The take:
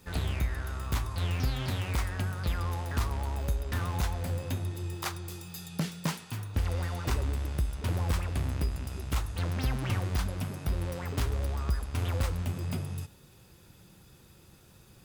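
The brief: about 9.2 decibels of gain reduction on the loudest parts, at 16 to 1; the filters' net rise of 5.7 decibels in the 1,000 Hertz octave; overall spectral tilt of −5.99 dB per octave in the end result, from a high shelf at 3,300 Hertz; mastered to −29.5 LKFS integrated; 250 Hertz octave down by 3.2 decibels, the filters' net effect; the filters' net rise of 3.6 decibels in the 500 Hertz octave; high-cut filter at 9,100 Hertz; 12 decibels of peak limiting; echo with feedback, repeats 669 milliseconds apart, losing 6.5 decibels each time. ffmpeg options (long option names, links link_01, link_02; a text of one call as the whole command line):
ffmpeg -i in.wav -af "lowpass=9100,equalizer=frequency=250:width_type=o:gain=-6.5,equalizer=frequency=500:width_type=o:gain=4.5,equalizer=frequency=1000:width_type=o:gain=7,highshelf=frequency=3300:gain=-8.5,acompressor=threshold=-33dB:ratio=16,alimiter=level_in=8dB:limit=-24dB:level=0:latency=1,volume=-8dB,aecho=1:1:669|1338|2007|2676|3345|4014:0.473|0.222|0.105|0.0491|0.0231|0.0109,volume=11dB" out.wav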